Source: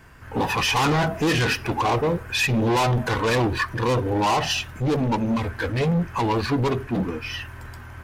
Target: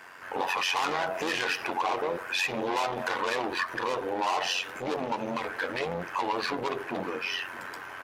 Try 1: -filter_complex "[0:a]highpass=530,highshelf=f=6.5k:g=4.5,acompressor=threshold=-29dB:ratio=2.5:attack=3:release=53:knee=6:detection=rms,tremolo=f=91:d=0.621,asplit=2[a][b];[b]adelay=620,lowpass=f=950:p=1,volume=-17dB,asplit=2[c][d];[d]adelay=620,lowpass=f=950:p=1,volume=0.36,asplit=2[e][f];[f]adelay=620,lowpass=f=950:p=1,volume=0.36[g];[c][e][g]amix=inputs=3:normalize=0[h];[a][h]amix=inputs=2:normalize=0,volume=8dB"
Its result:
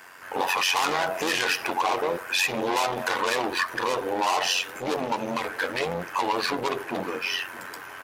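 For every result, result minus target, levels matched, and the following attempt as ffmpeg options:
8000 Hz band +4.0 dB; compressor: peak gain reduction -3.5 dB
-filter_complex "[0:a]highpass=530,highshelf=f=6.5k:g=-6.5,acompressor=threshold=-29dB:ratio=2.5:attack=3:release=53:knee=6:detection=rms,tremolo=f=91:d=0.621,asplit=2[a][b];[b]adelay=620,lowpass=f=950:p=1,volume=-17dB,asplit=2[c][d];[d]adelay=620,lowpass=f=950:p=1,volume=0.36,asplit=2[e][f];[f]adelay=620,lowpass=f=950:p=1,volume=0.36[g];[c][e][g]amix=inputs=3:normalize=0[h];[a][h]amix=inputs=2:normalize=0,volume=8dB"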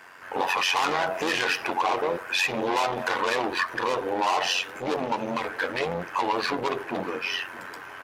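compressor: peak gain reduction -4 dB
-filter_complex "[0:a]highpass=530,highshelf=f=6.5k:g=-6.5,acompressor=threshold=-35.5dB:ratio=2.5:attack=3:release=53:knee=6:detection=rms,tremolo=f=91:d=0.621,asplit=2[a][b];[b]adelay=620,lowpass=f=950:p=1,volume=-17dB,asplit=2[c][d];[d]adelay=620,lowpass=f=950:p=1,volume=0.36,asplit=2[e][f];[f]adelay=620,lowpass=f=950:p=1,volume=0.36[g];[c][e][g]amix=inputs=3:normalize=0[h];[a][h]amix=inputs=2:normalize=0,volume=8dB"

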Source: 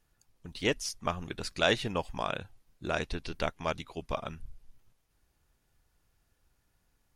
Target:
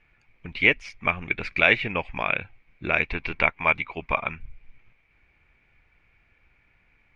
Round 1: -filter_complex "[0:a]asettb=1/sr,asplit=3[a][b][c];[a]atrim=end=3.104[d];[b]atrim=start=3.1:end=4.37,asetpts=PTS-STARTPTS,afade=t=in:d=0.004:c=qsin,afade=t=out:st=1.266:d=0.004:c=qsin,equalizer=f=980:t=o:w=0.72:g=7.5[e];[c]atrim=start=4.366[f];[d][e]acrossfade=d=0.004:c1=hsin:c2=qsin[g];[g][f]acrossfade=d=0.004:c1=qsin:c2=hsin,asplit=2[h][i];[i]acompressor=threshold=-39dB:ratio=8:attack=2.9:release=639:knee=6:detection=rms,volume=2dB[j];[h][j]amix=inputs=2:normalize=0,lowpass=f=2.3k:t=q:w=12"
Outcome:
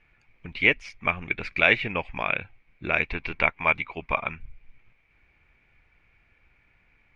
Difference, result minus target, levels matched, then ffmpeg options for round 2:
compressor: peak gain reduction +5.5 dB
-filter_complex "[0:a]asettb=1/sr,asplit=3[a][b][c];[a]atrim=end=3.104[d];[b]atrim=start=3.1:end=4.37,asetpts=PTS-STARTPTS,afade=t=in:d=0.004:c=qsin,afade=t=out:st=1.266:d=0.004:c=qsin,equalizer=f=980:t=o:w=0.72:g=7.5[e];[c]atrim=start=4.366[f];[d][e]acrossfade=d=0.004:c1=hsin:c2=qsin[g];[g][f]acrossfade=d=0.004:c1=qsin:c2=hsin,asplit=2[h][i];[i]acompressor=threshold=-32.5dB:ratio=8:attack=2.9:release=639:knee=6:detection=rms,volume=2dB[j];[h][j]amix=inputs=2:normalize=0,lowpass=f=2.3k:t=q:w=12"

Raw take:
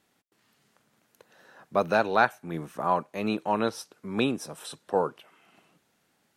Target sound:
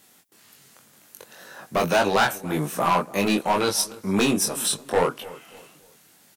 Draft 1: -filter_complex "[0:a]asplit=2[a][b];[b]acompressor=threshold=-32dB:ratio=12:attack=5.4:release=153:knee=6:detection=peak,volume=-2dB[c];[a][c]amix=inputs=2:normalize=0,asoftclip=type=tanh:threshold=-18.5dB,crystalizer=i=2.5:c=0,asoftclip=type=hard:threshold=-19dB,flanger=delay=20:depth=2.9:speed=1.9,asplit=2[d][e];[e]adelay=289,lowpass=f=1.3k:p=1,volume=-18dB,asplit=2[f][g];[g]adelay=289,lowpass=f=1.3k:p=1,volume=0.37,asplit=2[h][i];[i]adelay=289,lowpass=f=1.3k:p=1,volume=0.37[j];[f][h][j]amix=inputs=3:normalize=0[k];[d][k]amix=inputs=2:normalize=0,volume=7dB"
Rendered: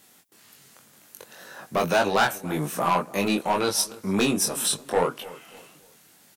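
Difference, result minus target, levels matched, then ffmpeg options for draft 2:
compressor: peak gain reduction +9.5 dB; soft clip: distortion +7 dB
-filter_complex "[0:a]asplit=2[a][b];[b]acompressor=threshold=-21.5dB:ratio=12:attack=5.4:release=153:knee=6:detection=peak,volume=-2dB[c];[a][c]amix=inputs=2:normalize=0,asoftclip=type=tanh:threshold=-10.5dB,crystalizer=i=2.5:c=0,asoftclip=type=hard:threshold=-19dB,flanger=delay=20:depth=2.9:speed=1.9,asplit=2[d][e];[e]adelay=289,lowpass=f=1.3k:p=1,volume=-18dB,asplit=2[f][g];[g]adelay=289,lowpass=f=1.3k:p=1,volume=0.37,asplit=2[h][i];[i]adelay=289,lowpass=f=1.3k:p=1,volume=0.37[j];[f][h][j]amix=inputs=3:normalize=0[k];[d][k]amix=inputs=2:normalize=0,volume=7dB"

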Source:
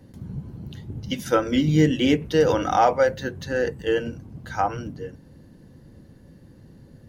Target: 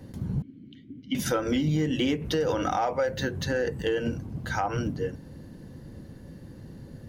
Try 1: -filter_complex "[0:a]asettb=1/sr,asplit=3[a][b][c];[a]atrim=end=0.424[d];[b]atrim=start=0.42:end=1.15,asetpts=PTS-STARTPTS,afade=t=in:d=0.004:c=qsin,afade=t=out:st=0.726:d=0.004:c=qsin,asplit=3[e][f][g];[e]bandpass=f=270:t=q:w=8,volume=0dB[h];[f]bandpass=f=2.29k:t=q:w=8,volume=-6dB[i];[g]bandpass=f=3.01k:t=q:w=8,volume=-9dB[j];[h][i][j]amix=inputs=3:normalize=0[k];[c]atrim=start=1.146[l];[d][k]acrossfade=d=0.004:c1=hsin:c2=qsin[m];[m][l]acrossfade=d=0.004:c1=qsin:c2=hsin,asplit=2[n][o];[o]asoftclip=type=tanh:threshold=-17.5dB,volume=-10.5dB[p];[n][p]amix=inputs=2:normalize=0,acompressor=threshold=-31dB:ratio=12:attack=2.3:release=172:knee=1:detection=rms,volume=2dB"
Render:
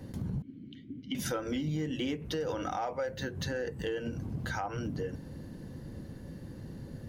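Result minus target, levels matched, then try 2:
compressor: peak gain reduction +8 dB
-filter_complex "[0:a]asettb=1/sr,asplit=3[a][b][c];[a]atrim=end=0.424[d];[b]atrim=start=0.42:end=1.15,asetpts=PTS-STARTPTS,afade=t=in:d=0.004:c=qsin,afade=t=out:st=0.726:d=0.004:c=qsin,asplit=3[e][f][g];[e]bandpass=f=270:t=q:w=8,volume=0dB[h];[f]bandpass=f=2.29k:t=q:w=8,volume=-6dB[i];[g]bandpass=f=3.01k:t=q:w=8,volume=-9dB[j];[h][i][j]amix=inputs=3:normalize=0[k];[c]atrim=start=1.146[l];[d][k]acrossfade=d=0.004:c1=hsin:c2=qsin[m];[m][l]acrossfade=d=0.004:c1=qsin:c2=hsin,asplit=2[n][o];[o]asoftclip=type=tanh:threshold=-17.5dB,volume=-10.5dB[p];[n][p]amix=inputs=2:normalize=0,acompressor=threshold=-22.5dB:ratio=12:attack=2.3:release=172:knee=1:detection=rms,volume=2dB"

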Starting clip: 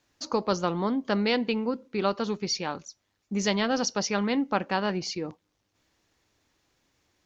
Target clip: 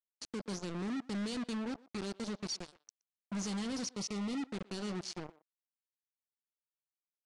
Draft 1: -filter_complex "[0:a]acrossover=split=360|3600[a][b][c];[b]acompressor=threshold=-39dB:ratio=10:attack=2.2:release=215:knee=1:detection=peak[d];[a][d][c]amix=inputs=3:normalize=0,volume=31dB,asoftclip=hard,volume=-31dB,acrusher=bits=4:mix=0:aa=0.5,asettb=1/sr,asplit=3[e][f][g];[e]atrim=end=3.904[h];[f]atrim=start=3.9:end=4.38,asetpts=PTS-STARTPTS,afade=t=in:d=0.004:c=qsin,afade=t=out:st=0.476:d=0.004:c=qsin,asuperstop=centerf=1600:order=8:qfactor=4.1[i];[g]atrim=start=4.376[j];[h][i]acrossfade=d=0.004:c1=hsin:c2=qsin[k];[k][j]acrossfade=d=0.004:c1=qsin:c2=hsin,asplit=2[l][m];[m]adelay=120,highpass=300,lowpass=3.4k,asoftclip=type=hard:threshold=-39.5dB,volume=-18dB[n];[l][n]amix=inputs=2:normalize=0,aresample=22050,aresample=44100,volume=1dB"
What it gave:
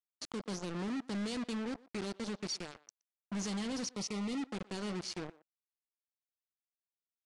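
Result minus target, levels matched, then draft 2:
compressor: peak gain reduction -10 dB
-filter_complex "[0:a]acrossover=split=360|3600[a][b][c];[b]acompressor=threshold=-50dB:ratio=10:attack=2.2:release=215:knee=1:detection=peak[d];[a][d][c]amix=inputs=3:normalize=0,volume=31dB,asoftclip=hard,volume=-31dB,acrusher=bits=4:mix=0:aa=0.5,asettb=1/sr,asplit=3[e][f][g];[e]atrim=end=3.904[h];[f]atrim=start=3.9:end=4.38,asetpts=PTS-STARTPTS,afade=t=in:d=0.004:c=qsin,afade=t=out:st=0.476:d=0.004:c=qsin,asuperstop=centerf=1600:order=8:qfactor=4.1[i];[g]atrim=start=4.376[j];[h][i]acrossfade=d=0.004:c1=hsin:c2=qsin[k];[k][j]acrossfade=d=0.004:c1=qsin:c2=hsin,asplit=2[l][m];[m]adelay=120,highpass=300,lowpass=3.4k,asoftclip=type=hard:threshold=-39.5dB,volume=-18dB[n];[l][n]amix=inputs=2:normalize=0,aresample=22050,aresample=44100,volume=1dB"

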